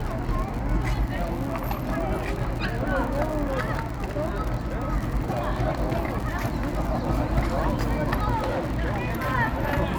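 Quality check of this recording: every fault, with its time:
surface crackle 75 per second −29 dBFS
0:08.35–0:09.33: clipping −22 dBFS

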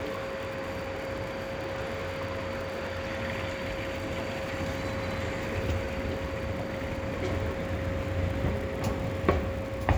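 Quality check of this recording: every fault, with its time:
surface crackle 67 per second −37 dBFS
whistle 540 Hz −36 dBFS

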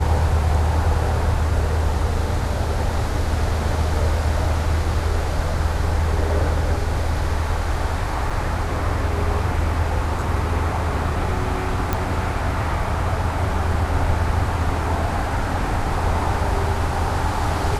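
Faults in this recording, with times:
0:08.30–0:08.31: drop-out 5.4 ms
0:11.93: click −7 dBFS

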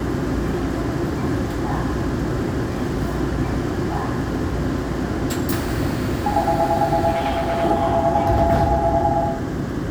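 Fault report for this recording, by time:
0:07.14–0:07.64: clipping −18 dBFS

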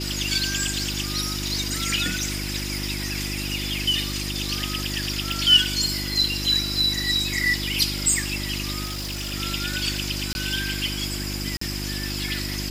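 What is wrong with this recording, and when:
mains hum 50 Hz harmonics 7 −31 dBFS
0:00.79: drop-out 3.3 ms
0:05.32: click
0:08.84–0:09.34: clipping −26.5 dBFS
0:10.33–0:10.35: drop-out 21 ms
0:11.57–0:11.61: drop-out 44 ms

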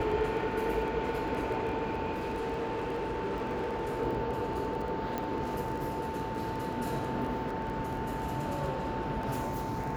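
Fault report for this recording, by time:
surface crackle 17 per second −37 dBFS
whistle 890 Hz −37 dBFS
0:02.12–0:04.02: clipping −30 dBFS
0:05.18: click

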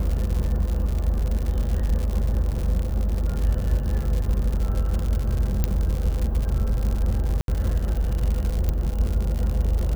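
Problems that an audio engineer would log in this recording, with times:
surface crackle 130 per second −26 dBFS
0:05.64: click −8 dBFS
0:07.41–0:07.48: drop-out 72 ms
0:08.69: click −12 dBFS

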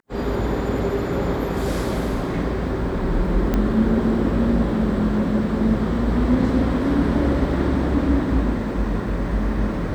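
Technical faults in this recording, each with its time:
0:03.54: click −9 dBFS

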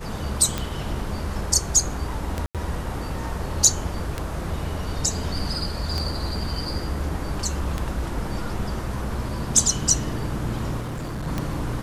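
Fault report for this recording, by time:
scratch tick 33 1/3 rpm
0:02.46–0:02.55: drop-out 87 ms
0:10.80–0:11.28: clipping −27 dBFS

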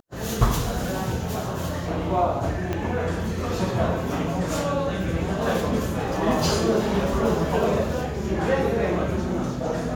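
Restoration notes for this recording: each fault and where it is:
0:02.73: click −14 dBFS

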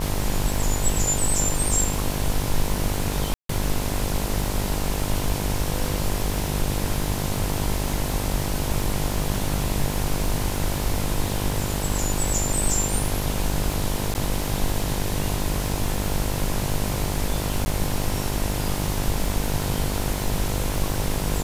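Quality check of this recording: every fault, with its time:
mains buzz 50 Hz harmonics 21 −28 dBFS
surface crackle 310 per second −31 dBFS
0:03.34–0:03.49: drop-out 153 ms
0:14.14–0:14.15: drop-out 9.7 ms
0:17.65–0:17.66: drop-out 10 ms

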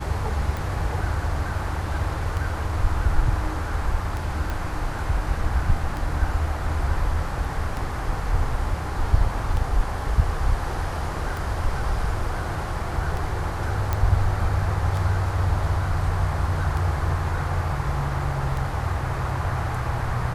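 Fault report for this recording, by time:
scratch tick 33 1/3 rpm
0:04.50: click
0:13.93: click −10 dBFS

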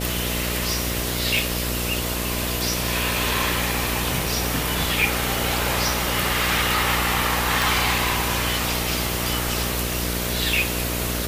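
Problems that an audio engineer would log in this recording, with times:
mains buzz 60 Hz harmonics 11 −28 dBFS
0:01.39: click
0:07.62: click

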